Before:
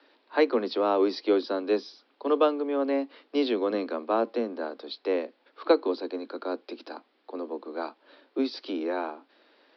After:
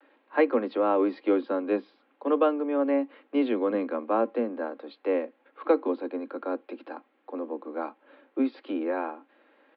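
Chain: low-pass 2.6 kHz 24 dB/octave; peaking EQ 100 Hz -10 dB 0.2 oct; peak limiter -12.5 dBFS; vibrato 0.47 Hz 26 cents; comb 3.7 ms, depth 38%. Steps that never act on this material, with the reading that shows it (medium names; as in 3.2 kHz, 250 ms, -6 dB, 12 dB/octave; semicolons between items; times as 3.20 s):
peaking EQ 100 Hz: input has nothing below 190 Hz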